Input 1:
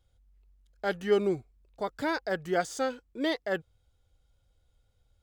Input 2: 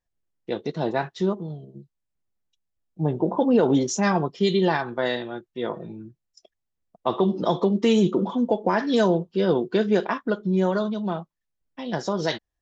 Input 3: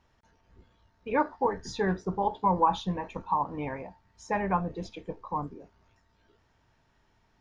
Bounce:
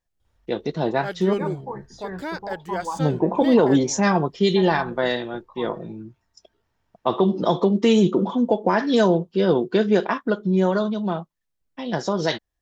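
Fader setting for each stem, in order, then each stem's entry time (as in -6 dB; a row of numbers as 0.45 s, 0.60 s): -1.0 dB, +2.5 dB, -6.5 dB; 0.20 s, 0.00 s, 0.25 s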